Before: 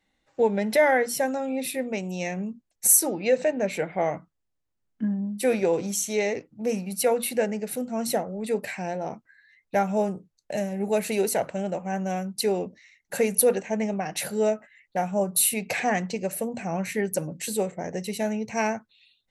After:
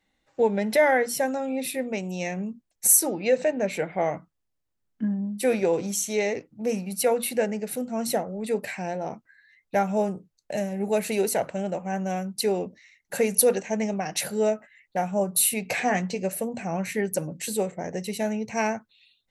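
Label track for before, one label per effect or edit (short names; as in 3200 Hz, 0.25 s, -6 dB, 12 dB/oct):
13.290000	14.210000	bell 5600 Hz +5.5 dB 1.1 oct
15.630000	16.330000	doubler 16 ms -9.5 dB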